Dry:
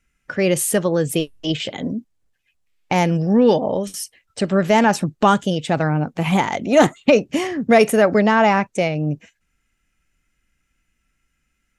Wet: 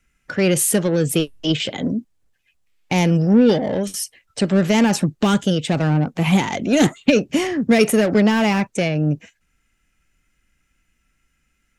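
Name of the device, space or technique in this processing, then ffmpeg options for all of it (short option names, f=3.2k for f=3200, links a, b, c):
one-band saturation: -filter_complex "[0:a]acrossover=split=420|2100[a][b][c];[b]asoftclip=type=tanh:threshold=-28dB[d];[a][d][c]amix=inputs=3:normalize=0,volume=3dB"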